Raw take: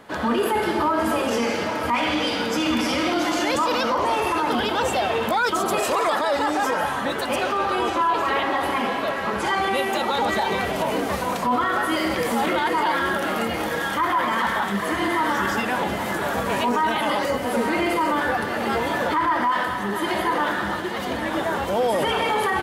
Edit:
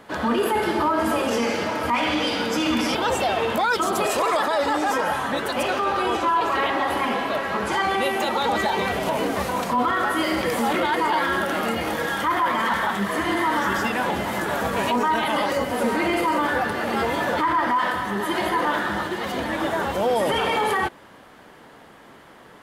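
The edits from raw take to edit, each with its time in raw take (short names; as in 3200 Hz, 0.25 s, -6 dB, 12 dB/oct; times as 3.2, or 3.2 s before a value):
2.95–4.68 cut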